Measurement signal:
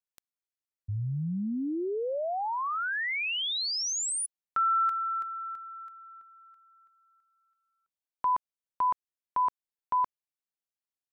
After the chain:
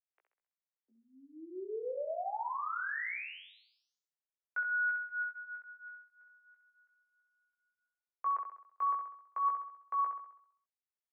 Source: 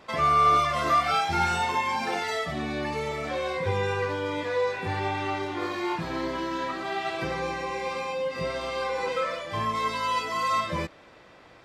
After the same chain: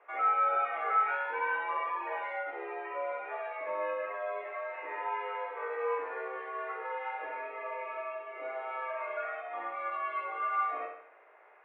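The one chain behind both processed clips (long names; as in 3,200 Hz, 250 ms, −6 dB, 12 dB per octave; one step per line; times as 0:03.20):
chorus effect 0.41 Hz, delay 16.5 ms, depth 4 ms
single-sideband voice off tune +120 Hz 280–2,200 Hz
flutter between parallel walls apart 11.3 metres, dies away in 0.65 s
level −4.5 dB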